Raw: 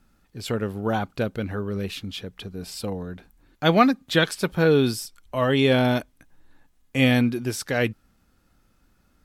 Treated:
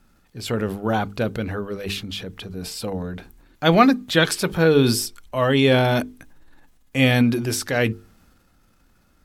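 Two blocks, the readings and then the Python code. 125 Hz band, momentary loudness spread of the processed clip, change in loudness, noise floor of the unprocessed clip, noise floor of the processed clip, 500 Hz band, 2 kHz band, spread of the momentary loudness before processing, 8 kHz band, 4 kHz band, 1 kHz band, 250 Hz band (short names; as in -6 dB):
+3.0 dB, 16 LU, +2.5 dB, -64 dBFS, -60 dBFS, +2.5 dB, +3.0 dB, 15 LU, +6.5 dB, +3.5 dB, +3.0 dB, +2.5 dB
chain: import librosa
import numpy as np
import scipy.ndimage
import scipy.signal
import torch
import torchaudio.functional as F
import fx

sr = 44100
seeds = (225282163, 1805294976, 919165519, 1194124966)

y = fx.transient(x, sr, attack_db=-1, sustain_db=6)
y = fx.hum_notches(y, sr, base_hz=50, count=9)
y = y * 10.0 ** (3.0 / 20.0)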